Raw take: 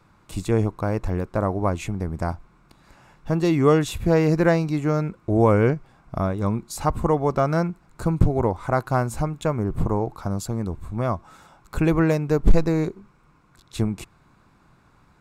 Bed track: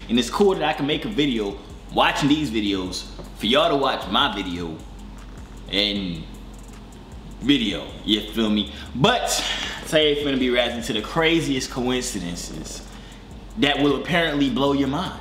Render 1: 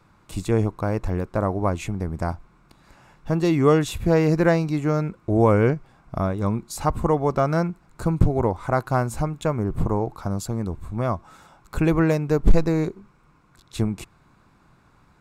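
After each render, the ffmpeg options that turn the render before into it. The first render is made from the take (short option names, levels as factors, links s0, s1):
-af anull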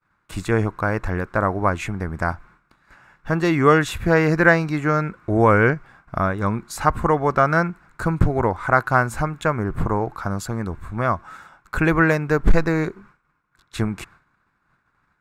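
-af "agate=range=0.0224:threshold=0.00501:ratio=3:detection=peak,equalizer=f=1600:t=o:w=1.1:g=13.5"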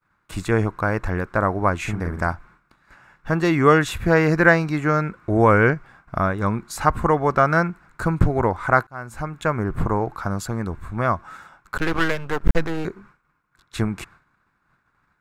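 -filter_complex "[0:a]asettb=1/sr,asplit=3[s0][s1][s2];[s0]atrim=end=1.804[s3];[s1]atrim=start=1.8:end=2.27,asetpts=PTS-STARTPTS,afade=t=in:d=0.004:c=qsin,afade=t=out:st=0.466:d=0.004:c=qsin,asplit=2[s4][s5];[s5]adelay=47,volume=0.596[s6];[s4][s6]amix=inputs=2:normalize=0,atrim=end_sample=20727[s7];[s2]atrim=start=2.266[s8];[s3][s7]acrossfade=d=0.004:c1=hsin:c2=qsin[s9];[s9][s8]acrossfade=d=0.004:c1=qsin:c2=hsin,asettb=1/sr,asplit=3[s10][s11][s12];[s10]atrim=end=11.774[s13];[s11]atrim=start=11.77:end=12.85,asetpts=PTS-STARTPTS,afade=t=in:d=0.004:c=qsin,afade=t=out:st=1.076:d=0.004:c=qsin,aeval=exprs='max(val(0),0)':c=same[s14];[s12]atrim=start=12.846[s15];[s13][s14]acrossfade=d=0.004:c1=hsin:c2=qsin[s16];[s16][s15]acrossfade=d=0.004:c1=qsin:c2=hsin,asplit=2[s17][s18];[s17]atrim=end=8.87,asetpts=PTS-STARTPTS,afade=t=out:st=8.866:d=0.004:c=hsin[s19];[s18]atrim=start=8.87,asetpts=PTS-STARTPTS,afade=t=in:d=0.7[s20];[s19][s20]concat=n=2:v=0:a=1"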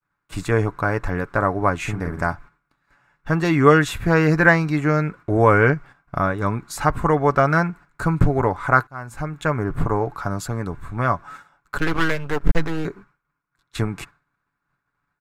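-af "agate=range=0.316:threshold=0.01:ratio=16:detection=peak,aecho=1:1:7:0.38"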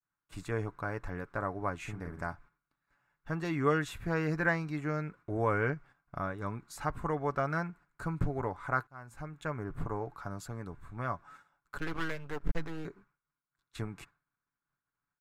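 -af "volume=0.178"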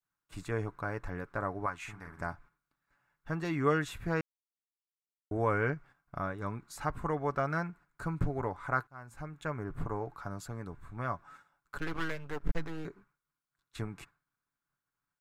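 -filter_complex "[0:a]asettb=1/sr,asplit=3[s0][s1][s2];[s0]atrim=end=1.664[s3];[s1]atrim=start=1.66:end=2.2,asetpts=PTS-STARTPTS,afade=t=in:d=0.004:c=qsin,afade=t=out:st=0.536:d=0.004:c=qsin,lowshelf=f=700:t=q:w=1.5:g=-8[s4];[s2]atrim=start=2.196[s5];[s3][s4]acrossfade=d=0.004:c1=hsin:c2=qsin[s6];[s6][s5]acrossfade=d=0.004:c1=qsin:c2=hsin,asplit=3[s7][s8][s9];[s7]atrim=end=4.21,asetpts=PTS-STARTPTS,afade=t=out:st=4.206:d=0.004:c=hsin[s10];[s8]atrim=start=4.21:end=5.31,asetpts=PTS-STARTPTS,volume=0[s11];[s9]atrim=start=5.31,asetpts=PTS-STARTPTS,afade=t=in:d=0.004:c=hsin[s12];[s10][s11][s12]concat=n=3:v=0:a=1"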